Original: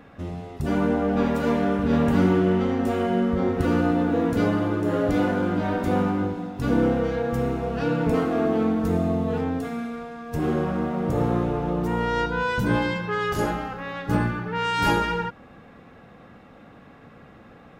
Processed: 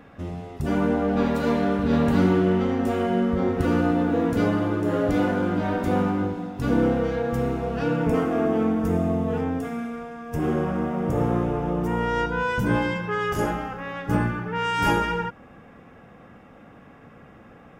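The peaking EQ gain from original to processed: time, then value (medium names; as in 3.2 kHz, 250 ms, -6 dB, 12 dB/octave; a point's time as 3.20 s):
peaking EQ 4.1 kHz 0.27 oct
0.79 s -3 dB
1.35 s +5 dB
2.18 s +5 dB
2.66 s -2 dB
7.72 s -2 dB
8.12 s -12.5 dB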